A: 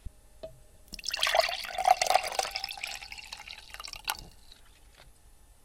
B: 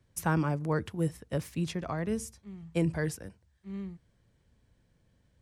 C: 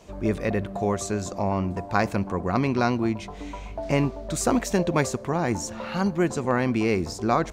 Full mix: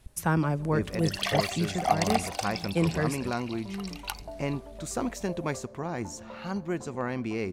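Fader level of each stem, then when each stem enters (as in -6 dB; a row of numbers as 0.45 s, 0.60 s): -3.0 dB, +2.5 dB, -8.5 dB; 0.00 s, 0.00 s, 0.50 s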